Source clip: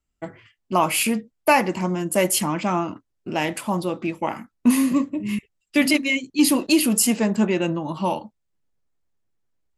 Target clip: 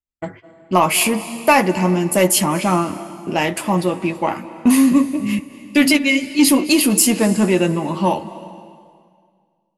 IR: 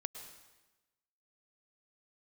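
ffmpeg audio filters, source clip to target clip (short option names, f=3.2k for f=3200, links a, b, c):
-filter_complex "[0:a]agate=range=-22dB:threshold=-43dB:ratio=16:detection=peak,acontrast=57,asplit=2[a][b];[1:a]atrim=start_sample=2205,asetrate=23814,aresample=44100,adelay=11[c];[b][c]afir=irnorm=-1:irlink=0,volume=-10dB[d];[a][d]amix=inputs=2:normalize=0,volume=-1dB"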